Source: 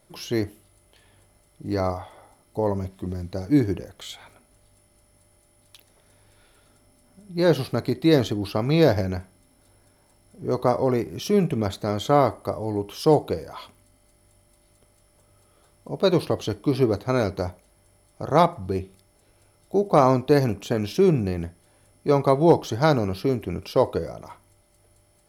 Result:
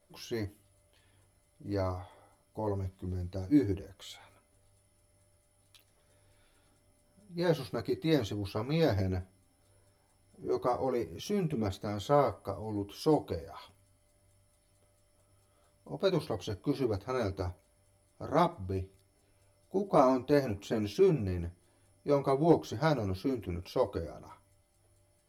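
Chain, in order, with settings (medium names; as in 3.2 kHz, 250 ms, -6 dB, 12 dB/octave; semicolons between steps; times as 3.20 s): chorus voices 6, 0.2 Hz, delay 12 ms, depth 2 ms; trim -6.5 dB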